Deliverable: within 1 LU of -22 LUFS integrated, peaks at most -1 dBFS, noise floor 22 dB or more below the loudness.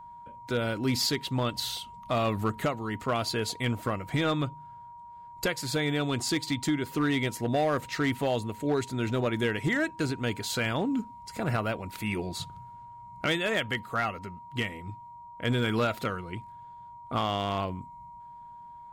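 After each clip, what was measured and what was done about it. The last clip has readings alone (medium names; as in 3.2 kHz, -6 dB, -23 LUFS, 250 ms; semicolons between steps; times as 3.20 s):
clipped samples 0.8%; clipping level -20.0 dBFS; steady tone 950 Hz; tone level -44 dBFS; loudness -30.0 LUFS; peak level -20.0 dBFS; loudness target -22.0 LUFS
-> clip repair -20 dBFS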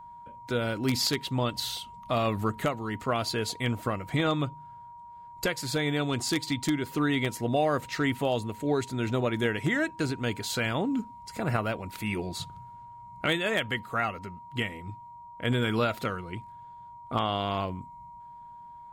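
clipped samples 0.0%; steady tone 950 Hz; tone level -44 dBFS
-> band-stop 950 Hz, Q 30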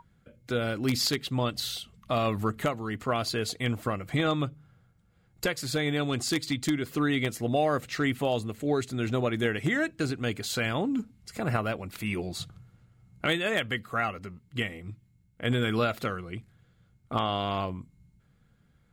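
steady tone not found; loudness -29.5 LUFS; peak level -11.0 dBFS; loudness target -22.0 LUFS
-> trim +7.5 dB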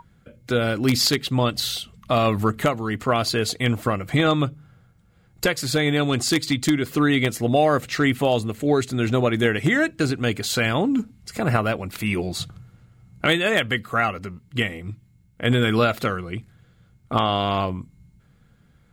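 loudness -22.0 LUFS; peak level -3.5 dBFS; noise floor -58 dBFS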